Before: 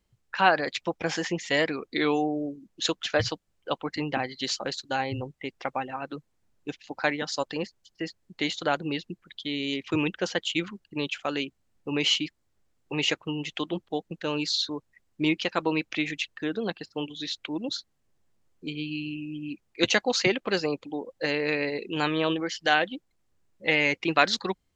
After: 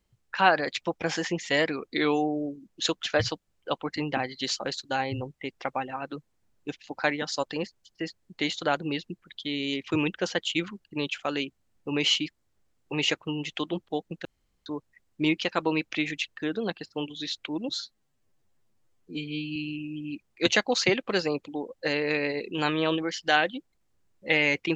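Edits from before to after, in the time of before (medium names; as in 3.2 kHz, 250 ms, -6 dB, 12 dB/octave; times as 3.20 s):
14.25–14.66 s: room tone
17.70–18.94 s: stretch 1.5×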